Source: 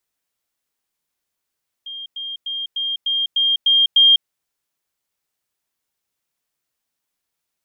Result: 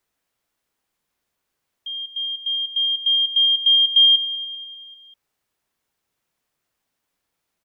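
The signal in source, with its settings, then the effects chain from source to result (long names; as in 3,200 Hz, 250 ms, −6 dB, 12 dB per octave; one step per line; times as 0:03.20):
level staircase 3,210 Hz −29 dBFS, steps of 3 dB, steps 8, 0.20 s 0.10 s
high-shelf EQ 3,000 Hz −8 dB
in parallel at +1.5 dB: brickwall limiter −22 dBFS
on the sum: repeating echo 196 ms, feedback 53%, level −12.5 dB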